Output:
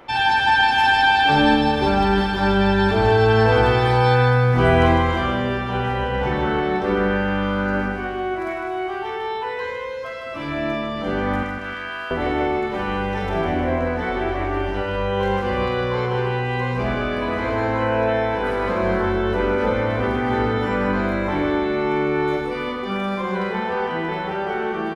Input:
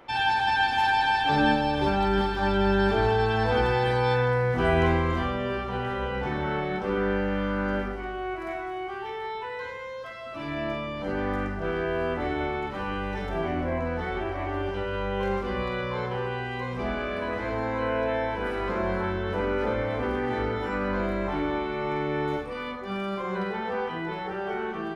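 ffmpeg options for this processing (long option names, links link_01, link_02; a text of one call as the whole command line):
ffmpeg -i in.wav -filter_complex "[0:a]asettb=1/sr,asplit=3[link_01][link_02][link_03];[link_01]atrim=end=11.434[link_04];[link_02]atrim=start=11.43:end=12.11,asetpts=PTS-STARTPTS,afade=type=in:duration=0.004:curve=qsin,afade=type=out:start_time=0.676:duration=0.004:curve=qsin,highpass=1300[link_05];[link_03]atrim=start=12.106[link_06];[link_04][link_05]acrossfade=duration=0.004:curve1=hsin:curve2=qsin[link_07];[link_07][link_06]acrossfade=duration=0.004:curve1=qsin:curve2=hsin,asplit=2[link_08][link_09];[link_09]aecho=0:1:154|308|462|616|770|924:0.473|0.227|0.109|0.0523|0.0251|0.0121[link_10];[link_08][link_10]amix=inputs=2:normalize=0,volume=6dB" out.wav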